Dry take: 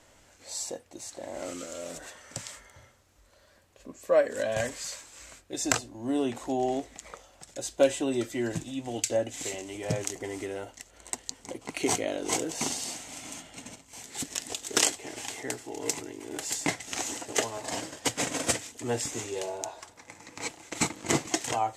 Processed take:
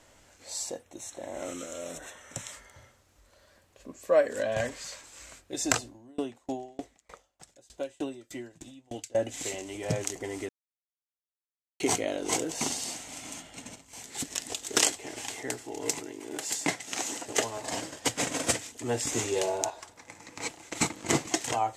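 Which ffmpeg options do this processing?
ffmpeg -i in.wav -filter_complex "[0:a]asettb=1/sr,asplit=3[link_01][link_02][link_03];[link_01]atrim=end=0.824[link_04];[link_02]atrim=start=0.82:end=2.52,asetpts=PTS-STARTPTS,afade=type=in:duration=0.004:curve=qsin,afade=type=out:start_time=1.696:duration=0.004:curve=qsin,asuperstop=centerf=4700:order=4:qfactor=4.3[link_05];[link_03]atrim=start=2.516[link_06];[link_04][link_05]acrossfade=duration=0.004:curve1=hsin:curve2=qsin[link_07];[link_07][link_06]acrossfade=duration=0.004:curve1=qsin:curve2=hsin,asettb=1/sr,asplit=3[link_08][link_09][link_10];[link_08]atrim=end=4.394[link_11];[link_09]atrim=start=4.39:end=5.04,asetpts=PTS-STARTPTS,afade=type=in:duration=0.004:curve=qsin,afade=type=out:start_time=0.646:duration=0.004:curve=qsin,equalizer=frequency=11000:width_type=o:width=1.7:gain=-7[link_12];[link_10]atrim=start=5.036[link_13];[link_11][link_12]acrossfade=duration=0.004:curve1=hsin:curve2=qsin[link_14];[link_14][link_13]acrossfade=duration=0.004:curve1=qsin:curve2=hsin,asettb=1/sr,asplit=3[link_15][link_16][link_17];[link_15]atrim=end=5.884[link_18];[link_16]atrim=start=5.88:end=9.15,asetpts=PTS-STARTPTS,afade=type=in:duration=0.004:curve=qsin,afade=type=out:start_time=3.266:duration=0.004:curve=qsin,aeval=exprs='val(0)*pow(10,-31*if(lt(mod(3.3*n/s,1),2*abs(3.3)/1000),1-mod(3.3*n/s,1)/(2*abs(3.3)/1000),(mod(3.3*n/s,1)-2*abs(3.3)/1000)/(1-2*abs(3.3)/1000))/20)':channel_layout=same[link_19];[link_17]atrim=start=9.146[link_20];[link_18][link_19]acrossfade=duration=0.004:curve1=hsin:curve2=qsin[link_21];[link_21][link_20]acrossfade=duration=0.004:curve1=qsin:curve2=hsin,asettb=1/sr,asplit=3[link_22][link_23][link_24];[link_22]atrim=end=15.994[link_25];[link_23]atrim=start=15.99:end=17.26,asetpts=PTS-STARTPTS,afade=type=in:duration=0.004:curve=qsin,afade=type=out:start_time=1.266:duration=0.004:curve=qsin,highpass=140[link_26];[link_24]atrim=start=17.256[link_27];[link_25][link_26]acrossfade=duration=0.004:curve1=hsin:curve2=qsin[link_28];[link_28][link_27]acrossfade=duration=0.004:curve1=qsin:curve2=hsin,asplit=5[link_29][link_30][link_31][link_32][link_33];[link_29]atrim=end=10.49,asetpts=PTS-STARTPTS,afade=type=out:start_time=10.486:duration=0.004:curve=hsin[link_34];[link_30]atrim=start=10.49:end=11.8,asetpts=PTS-STARTPTS,volume=0[link_35];[link_31]atrim=start=11.8:end=19.072,asetpts=PTS-STARTPTS,afade=type=in:duration=0.004:curve=hsin[link_36];[link_32]atrim=start=19.068:end=19.702,asetpts=PTS-STARTPTS,volume=5.5dB[link_37];[link_33]atrim=start=19.698[link_38];[link_34][link_35][link_36]concat=n=3:v=0:a=1[link_39];[link_39][link_37]acrossfade=duration=0.004:curve1=hsin:curve2=hsin[link_40];[link_40][link_38]acrossfade=duration=0.004:curve1=hsin:curve2=hsin" out.wav

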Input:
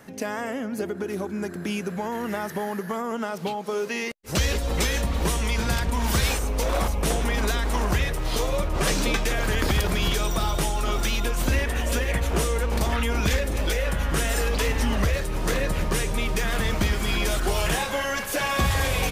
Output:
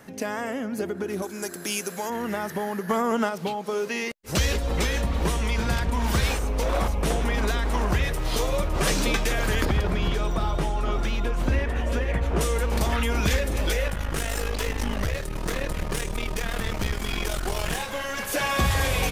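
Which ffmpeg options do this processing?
ffmpeg -i in.wav -filter_complex "[0:a]asettb=1/sr,asplit=3[link_01][link_02][link_03];[link_01]atrim=end=1.224[link_04];[link_02]atrim=start=1.22:end=2.1,asetpts=PTS-STARTPTS,afade=type=in:duration=0.004:curve=qsin,afade=type=out:start_time=0.876:duration=0.004:curve=qsin,bass=frequency=250:gain=-12,treble=frequency=4000:gain=14[link_05];[link_03]atrim=start=2.096[link_06];[link_04][link_05]acrossfade=duration=0.004:curve1=hsin:curve2=qsin[link_07];[link_07][link_06]acrossfade=duration=0.004:curve1=qsin:curve2=hsin,asplit=3[link_08][link_09][link_10];[link_08]afade=type=out:start_time=2.88:duration=0.02[link_11];[link_09]acontrast=32,afade=type=in:start_time=2.88:duration=0.02,afade=type=out:start_time=3.28:duration=0.02[link_12];[link_10]afade=type=in:start_time=3.28:duration=0.02[link_13];[link_11][link_12][link_13]amix=inputs=3:normalize=0,asettb=1/sr,asplit=3[link_14][link_15][link_16];[link_14]atrim=end=4.564[link_17];[link_15]atrim=start=4.56:end=8.04,asetpts=PTS-STARTPTS,afade=type=in:duration=0.004:curve=qsin,afade=type=out:start_time=3.476:duration=0.004:curve=qsin,highshelf=frequency=4500:gain=-6.5[link_18];[link_16]atrim=start=8.036[link_19];[link_17][link_18]acrossfade=duration=0.004:curve1=hsin:curve2=qsin[link_20];[link_20][link_19]acrossfade=duration=0.004:curve1=qsin:curve2=hsin,asettb=1/sr,asplit=3[link_21][link_22][link_23];[link_21]atrim=end=9.654[link_24];[link_22]atrim=start=9.65:end=12.41,asetpts=PTS-STARTPTS,afade=type=in:duration=0.004:curve=qsin,afade=type=out:start_time=2.756:duration=0.004:curve=qsin,lowpass=frequency=1600:poles=1[link_25];[link_23]atrim=start=12.406[link_26];[link_24][link_25]acrossfade=duration=0.004:curve1=hsin:curve2=qsin[link_27];[link_27][link_26]acrossfade=duration=0.004:curve1=qsin:curve2=hsin,asettb=1/sr,asplit=3[link_28][link_29][link_30];[link_28]atrim=end=13.884[link_31];[link_29]atrim=start=13.88:end=18.19,asetpts=PTS-STARTPTS,afade=type=in:duration=0.004:curve=qsin,afade=type=out:start_time=4.306:duration=0.004:curve=qsin,aeval=exprs='(tanh(10*val(0)+0.75)-tanh(0.75))/10':channel_layout=same[link_32];[link_30]atrim=start=18.186[link_33];[link_31][link_32]acrossfade=duration=0.004:curve1=hsin:curve2=qsin[link_34];[link_34][link_33]acrossfade=duration=0.004:curve1=qsin:curve2=hsin" out.wav

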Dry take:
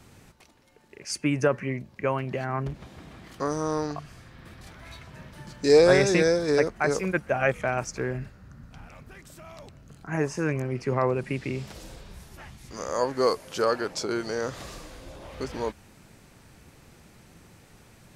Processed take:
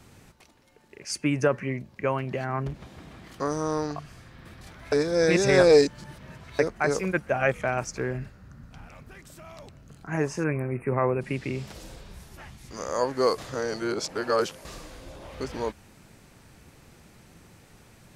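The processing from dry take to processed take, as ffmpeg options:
ffmpeg -i in.wav -filter_complex "[0:a]asplit=3[link_01][link_02][link_03];[link_01]afade=type=out:start_time=10.43:duration=0.02[link_04];[link_02]asuperstop=centerf=4900:order=20:qfactor=0.82,afade=type=in:start_time=10.43:duration=0.02,afade=type=out:start_time=11.2:duration=0.02[link_05];[link_03]afade=type=in:start_time=11.2:duration=0.02[link_06];[link_04][link_05][link_06]amix=inputs=3:normalize=0,asplit=5[link_07][link_08][link_09][link_10][link_11];[link_07]atrim=end=4.922[link_12];[link_08]atrim=start=4.918:end=6.592,asetpts=PTS-STARTPTS,areverse[link_13];[link_09]atrim=start=6.588:end=13.382[link_14];[link_10]atrim=start=13.378:end=14.652,asetpts=PTS-STARTPTS,areverse[link_15];[link_11]atrim=start=14.648[link_16];[link_12][link_13]acrossfade=duration=0.004:curve1=hsin:curve2=hsin[link_17];[link_17][link_14]acrossfade=duration=0.004:curve1=hsin:curve2=hsin[link_18];[link_18][link_15]acrossfade=duration=0.004:curve1=hsin:curve2=hsin[link_19];[link_19][link_16]acrossfade=duration=0.004:curve1=hsin:curve2=hsin" out.wav

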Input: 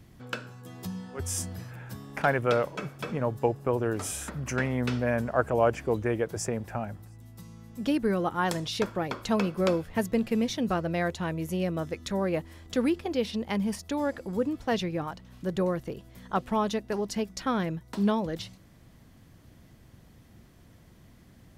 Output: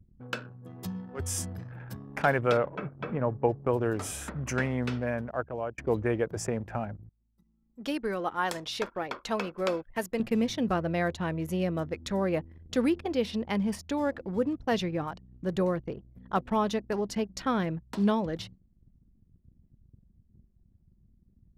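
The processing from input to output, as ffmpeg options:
ffmpeg -i in.wav -filter_complex "[0:a]asettb=1/sr,asplit=3[link_01][link_02][link_03];[link_01]atrim=end=2.574[link_04];[link_02]atrim=start=2.57:end=3.49,asetpts=PTS-STARTPTS,afade=type=in:duration=0.004:curve=qsin,afade=type=out:start_time=0.916:duration=0.004:curve=qsin,lowpass=2200[link_05];[link_03]atrim=start=3.486[link_06];[link_04][link_05]acrossfade=duration=0.004:curve1=hsin:curve2=qsin[link_07];[link_07][link_06]acrossfade=duration=0.004:curve1=qsin:curve2=hsin,asettb=1/sr,asplit=3[link_08][link_09][link_10];[link_08]atrim=end=7.094[link_11];[link_09]atrim=start=7.09:end=10.2,asetpts=PTS-STARTPTS,afade=type=in:duration=0.004:curve=qsin,afade=type=out:start_time=3.106:duration=0.004:curve=qsin,equalizer=frequency=100:width=0.45:gain=-14.5[link_12];[link_10]atrim=start=10.196[link_13];[link_11][link_12]acrossfade=duration=0.004:curve1=hsin:curve2=qsin[link_14];[link_14][link_13]acrossfade=duration=0.004:curve1=qsin:curve2=hsin,asplit=2[link_15][link_16];[link_15]atrim=end=5.78,asetpts=PTS-STARTPTS,afade=type=out:start_time=4.53:duration=1.25:silence=0.188365[link_17];[link_16]atrim=start=5.78,asetpts=PTS-STARTPTS,afade=type=in:duration=0.004:curve=hsin:silence=0.188365[link_18];[link_17][link_18]concat=n=2:v=0:a=1,anlmdn=0.0631,adynamicequalizer=threshold=0.00355:dfrequency=3800:dqfactor=0.7:tfrequency=3800:tqfactor=0.7:attack=5:release=100:ratio=0.375:range=2:mode=cutabove:tftype=highshelf" out.wav

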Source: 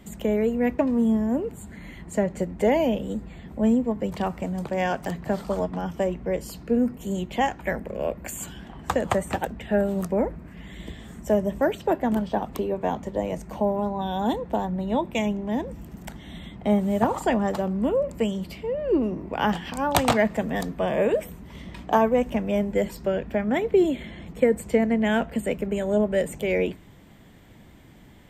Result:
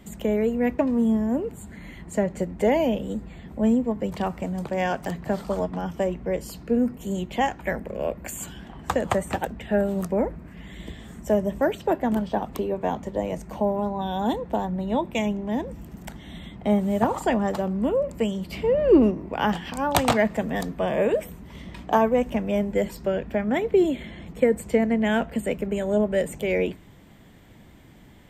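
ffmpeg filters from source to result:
ffmpeg -i in.wav -filter_complex "[0:a]asplit=3[link_01][link_02][link_03];[link_01]afade=type=out:start_time=18.52:duration=0.02[link_04];[link_02]acontrast=76,afade=type=in:start_time=18.52:duration=0.02,afade=type=out:start_time=19.1:duration=0.02[link_05];[link_03]afade=type=in:start_time=19.1:duration=0.02[link_06];[link_04][link_05][link_06]amix=inputs=3:normalize=0" out.wav

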